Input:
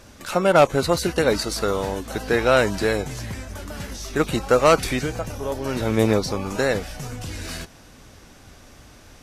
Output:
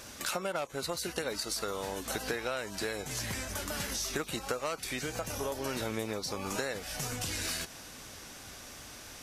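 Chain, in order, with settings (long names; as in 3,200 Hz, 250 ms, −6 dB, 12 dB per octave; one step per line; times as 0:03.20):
spectral tilt +2 dB per octave
downward compressor 16 to 1, threshold −31 dBFS, peak gain reduction 21 dB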